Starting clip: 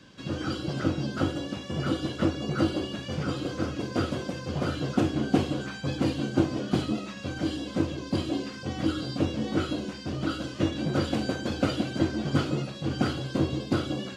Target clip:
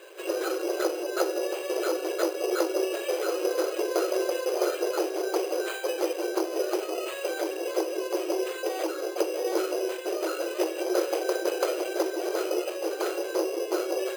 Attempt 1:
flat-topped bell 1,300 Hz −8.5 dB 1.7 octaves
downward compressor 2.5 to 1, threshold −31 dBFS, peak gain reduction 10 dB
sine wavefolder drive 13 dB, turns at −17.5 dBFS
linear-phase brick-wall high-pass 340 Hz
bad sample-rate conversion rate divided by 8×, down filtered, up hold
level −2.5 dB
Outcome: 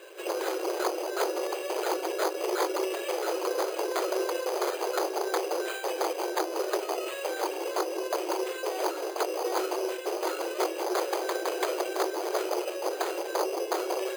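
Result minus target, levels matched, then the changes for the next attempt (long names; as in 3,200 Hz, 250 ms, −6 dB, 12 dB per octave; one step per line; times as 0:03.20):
sine wavefolder: distortion +15 dB
change: sine wavefolder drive 13 dB, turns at −9 dBFS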